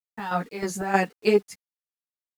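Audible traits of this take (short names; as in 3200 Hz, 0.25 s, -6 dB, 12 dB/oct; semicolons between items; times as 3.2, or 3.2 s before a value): chopped level 3.2 Hz, depth 65%, duty 60%; a quantiser's noise floor 10-bit, dither none; a shimmering, thickened sound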